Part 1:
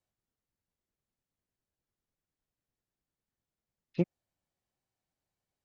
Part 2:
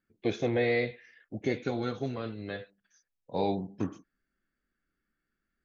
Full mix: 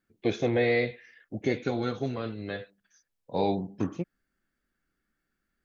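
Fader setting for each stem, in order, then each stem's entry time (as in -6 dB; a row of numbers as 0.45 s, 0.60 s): -5.0 dB, +2.5 dB; 0.00 s, 0.00 s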